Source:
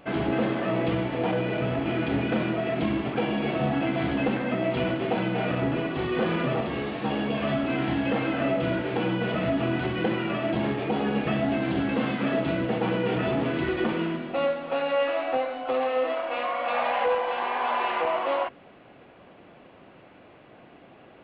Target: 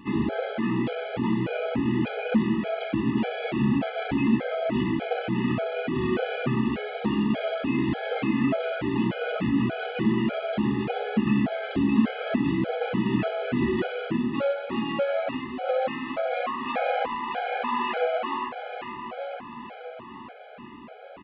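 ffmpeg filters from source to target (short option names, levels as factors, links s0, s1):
-filter_complex "[0:a]equalizer=f=230:w=5.7:g=12,asplit=2[s0][s1];[s1]acompressor=threshold=0.0141:ratio=6,volume=0.891[s2];[s0][s2]amix=inputs=2:normalize=0,aeval=exprs='0.376*(cos(1*acos(clip(val(0)/0.376,-1,1)))-cos(1*PI/2))+0.00944*(cos(5*acos(clip(val(0)/0.376,-1,1)))-cos(5*PI/2))':c=same,aecho=1:1:919|1838|2757|3676|4595:0.376|0.177|0.083|0.039|0.0183,afftfilt=real='re*gt(sin(2*PI*1.7*pts/sr)*(1-2*mod(floor(b*sr/1024/420),2)),0)':imag='im*gt(sin(2*PI*1.7*pts/sr)*(1-2*mod(floor(b*sr/1024/420),2)),0)':win_size=1024:overlap=0.75,volume=0.841"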